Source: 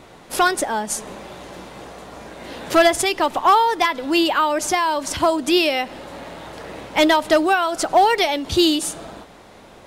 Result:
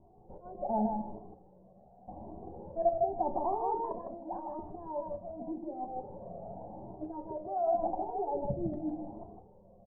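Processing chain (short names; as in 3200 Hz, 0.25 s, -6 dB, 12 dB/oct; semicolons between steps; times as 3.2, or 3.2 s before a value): Wiener smoothing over 9 samples; elliptic low-pass 770 Hz, stop band 70 dB; 1.18–2.08 expander -29 dBFS; 8.35–8.76 low shelf 280 Hz +11.5 dB; level quantiser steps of 15 dB; auto swell 0.408 s; 3.79–4.59 negative-ratio compressor -38 dBFS, ratio -1; feedback echo 0.156 s, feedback 18%, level -4 dB; reverb RT60 0.35 s, pre-delay 5 ms, DRR 6 dB; cascading flanger rising 0.87 Hz; gain +2 dB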